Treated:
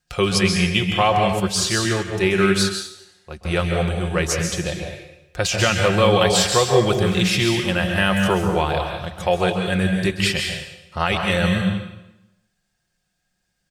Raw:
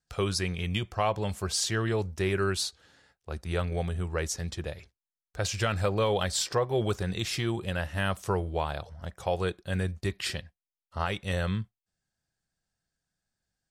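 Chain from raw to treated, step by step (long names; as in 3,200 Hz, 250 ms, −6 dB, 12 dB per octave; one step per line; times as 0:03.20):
parametric band 2,600 Hz +5.5 dB 0.76 octaves
comb filter 5.6 ms, depth 42%
dense smooth reverb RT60 0.9 s, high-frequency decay 0.95×, pre-delay 120 ms, DRR 2.5 dB
0:01.40–0:03.45: expander for the loud parts 1.5 to 1, over −39 dBFS
level +8 dB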